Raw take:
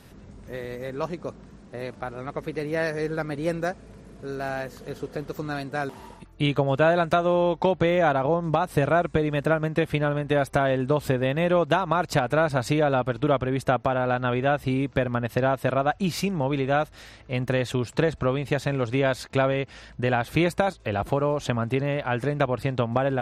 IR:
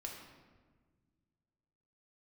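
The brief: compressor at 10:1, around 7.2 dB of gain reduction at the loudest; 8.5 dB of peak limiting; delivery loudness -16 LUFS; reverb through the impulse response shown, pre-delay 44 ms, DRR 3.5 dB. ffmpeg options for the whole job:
-filter_complex "[0:a]acompressor=threshold=-24dB:ratio=10,alimiter=limit=-21.5dB:level=0:latency=1,asplit=2[a][b];[1:a]atrim=start_sample=2205,adelay=44[c];[b][c]afir=irnorm=-1:irlink=0,volume=-1.5dB[d];[a][d]amix=inputs=2:normalize=0,volume=14.5dB"

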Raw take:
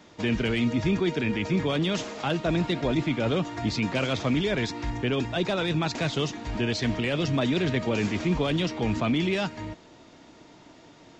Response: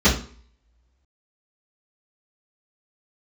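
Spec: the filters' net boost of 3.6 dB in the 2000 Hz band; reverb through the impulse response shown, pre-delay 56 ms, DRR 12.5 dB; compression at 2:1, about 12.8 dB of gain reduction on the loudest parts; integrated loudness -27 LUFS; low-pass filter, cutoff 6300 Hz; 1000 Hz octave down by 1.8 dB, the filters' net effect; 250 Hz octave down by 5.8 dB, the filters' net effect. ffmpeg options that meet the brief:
-filter_complex "[0:a]lowpass=6.3k,equalizer=f=250:t=o:g=-8,equalizer=f=1k:t=o:g=-3.5,equalizer=f=2k:t=o:g=5.5,acompressor=threshold=-48dB:ratio=2,asplit=2[a][b];[1:a]atrim=start_sample=2205,adelay=56[c];[b][c]afir=irnorm=-1:irlink=0,volume=-33dB[d];[a][d]amix=inputs=2:normalize=0,volume=13dB"

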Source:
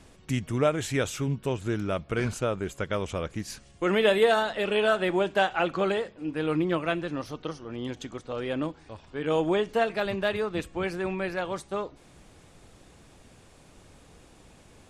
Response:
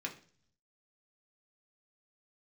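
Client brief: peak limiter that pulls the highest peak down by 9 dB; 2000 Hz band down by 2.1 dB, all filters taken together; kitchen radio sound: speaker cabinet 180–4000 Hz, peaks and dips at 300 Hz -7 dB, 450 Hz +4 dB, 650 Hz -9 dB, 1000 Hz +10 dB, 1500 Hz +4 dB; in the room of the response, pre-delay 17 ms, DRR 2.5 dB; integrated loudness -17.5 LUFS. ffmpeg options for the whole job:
-filter_complex "[0:a]equalizer=f=2k:t=o:g=-7.5,alimiter=limit=-20dB:level=0:latency=1,asplit=2[a][b];[1:a]atrim=start_sample=2205,adelay=17[c];[b][c]afir=irnorm=-1:irlink=0,volume=-3.5dB[d];[a][d]amix=inputs=2:normalize=0,highpass=180,equalizer=f=300:t=q:w=4:g=-7,equalizer=f=450:t=q:w=4:g=4,equalizer=f=650:t=q:w=4:g=-9,equalizer=f=1k:t=q:w=4:g=10,equalizer=f=1.5k:t=q:w=4:g=4,lowpass=f=4k:w=0.5412,lowpass=f=4k:w=1.3066,volume=12.5dB"

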